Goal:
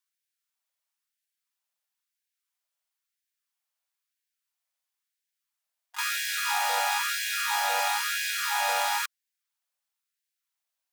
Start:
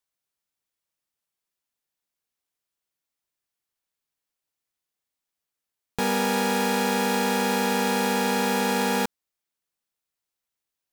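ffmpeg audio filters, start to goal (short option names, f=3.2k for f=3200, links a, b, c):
-filter_complex "[0:a]asplit=3[a][b][c];[b]asetrate=66075,aresample=44100,atempo=0.66742,volume=-11dB[d];[c]asetrate=88200,aresample=44100,atempo=0.5,volume=-18dB[e];[a][d][e]amix=inputs=3:normalize=0,afftfilt=real='re*gte(b*sr/1024,500*pow(1500/500,0.5+0.5*sin(2*PI*1*pts/sr)))':imag='im*gte(b*sr/1024,500*pow(1500/500,0.5+0.5*sin(2*PI*1*pts/sr)))':win_size=1024:overlap=0.75"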